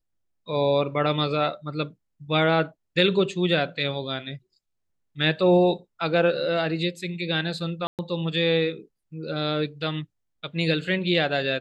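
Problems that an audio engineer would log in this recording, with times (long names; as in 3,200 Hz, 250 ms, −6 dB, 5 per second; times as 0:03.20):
0:07.87–0:07.99: drop-out 118 ms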